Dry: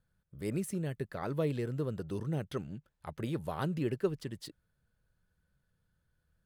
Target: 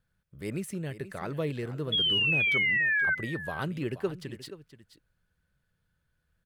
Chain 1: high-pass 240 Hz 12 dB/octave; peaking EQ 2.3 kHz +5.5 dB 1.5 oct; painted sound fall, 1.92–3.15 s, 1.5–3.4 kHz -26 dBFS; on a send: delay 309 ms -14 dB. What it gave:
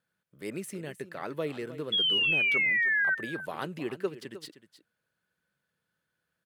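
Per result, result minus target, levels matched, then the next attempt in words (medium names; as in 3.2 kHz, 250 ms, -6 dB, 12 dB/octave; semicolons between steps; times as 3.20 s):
echo 169 ms early; 250 Hz band -3.5 dB
high-pass 240 Hz 12 dB/octave; peaking EQ 2.3 kHz +5.5 dB 1.5 oct; painted sound fall, 1.92–3.15 s, 1.5–3.4 kHz -26 dBFS; on a send: delay 478 ms -14 dB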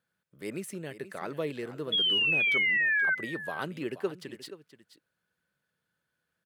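250 Hz band -3.5 dB
peaking EQ 2.3 kHz +5.5 dB 1.5 oct; painted sound fall, 1.92–3.15 s, 1.5–3.4 kHz -26 dBFS; on a send: delay 478 ms -14 dB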